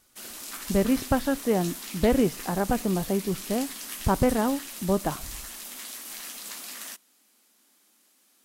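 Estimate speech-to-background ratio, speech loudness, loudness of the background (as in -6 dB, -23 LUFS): 9.5 dB, -27.0 LUFS, -36.5 LUFS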